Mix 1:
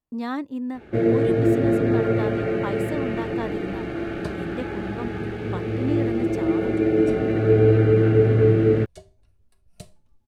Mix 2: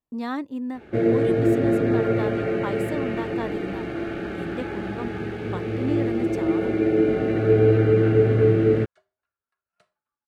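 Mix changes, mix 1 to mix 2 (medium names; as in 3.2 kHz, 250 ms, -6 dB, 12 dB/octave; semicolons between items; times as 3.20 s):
second sound: add band-pass filter 1.4 kHz, Q 3.9; master: add bass shelf 110 Hz -4.5 dB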